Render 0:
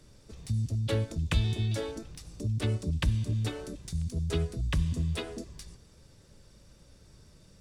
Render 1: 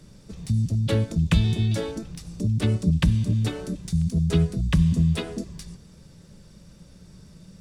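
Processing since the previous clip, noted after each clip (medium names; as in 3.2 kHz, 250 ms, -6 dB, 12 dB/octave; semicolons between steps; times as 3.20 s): peaking EQ 180 Hz +12.5 dB 0.57 oct; trim +4.5 dB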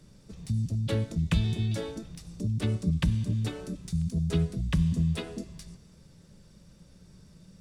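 feedback comb 130 Hz, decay 1.7 s, mix 50%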